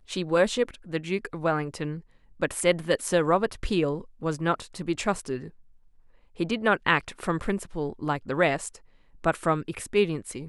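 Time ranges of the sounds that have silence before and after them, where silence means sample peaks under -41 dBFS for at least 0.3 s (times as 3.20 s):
2.40–5.50 s
6.38–8.77 s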